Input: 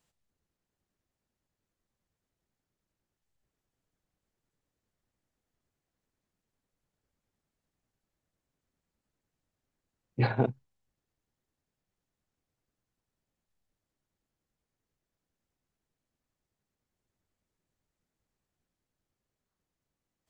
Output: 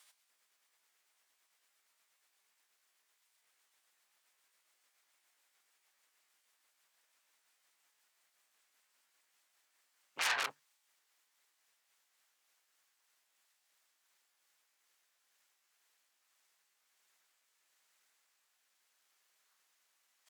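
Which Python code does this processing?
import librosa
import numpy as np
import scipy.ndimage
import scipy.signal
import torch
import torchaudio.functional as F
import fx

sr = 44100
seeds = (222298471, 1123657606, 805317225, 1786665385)

y = fx.pitch_glide(x, sr, semitones=3.0, runs='ending unshifted')
y = fx.tube_stage(y, sr, drive_db=33.0, bias=0.45)
y = fx.fold_sine(y, sr, drive_db=8, ceiling_db=-30.0)
y = scipy.signal.sosfilt(scipy.signal.butter(2, 1300.0, 'highpass', fs=sr, output='sos'), y)
y = y * librosa.db_to_amplitude(6.0)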